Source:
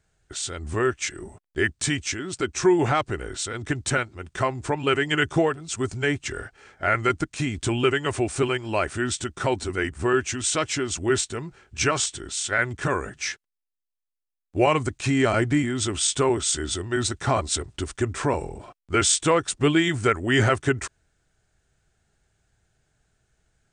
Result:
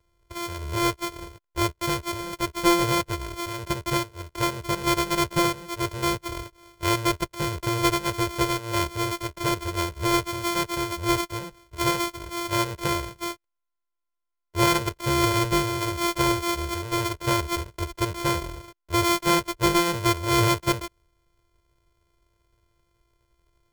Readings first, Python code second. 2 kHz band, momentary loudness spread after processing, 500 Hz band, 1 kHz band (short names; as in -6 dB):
-3.0 dB, 11 LU, -3.5 dB, +2.5 dB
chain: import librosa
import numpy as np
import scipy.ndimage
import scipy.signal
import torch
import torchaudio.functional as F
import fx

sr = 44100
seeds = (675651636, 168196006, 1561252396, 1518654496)

y = np.r_[np.sort(x[:len(x) // 128 * 128].reshape(-1, 128), axis=1).ravel(), x[len(x) // 128 * 128:]]
y = y + 1.0 * np.pad(y, (int(2.0 * sr / 1000.0), 0))[:len(y)]
y = y * librosa.db_to_amplitude(-3.0)